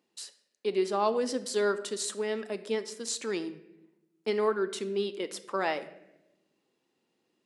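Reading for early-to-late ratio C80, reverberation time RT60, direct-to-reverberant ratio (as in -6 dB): 16.0 dB, 0.90 s, 11.0 dB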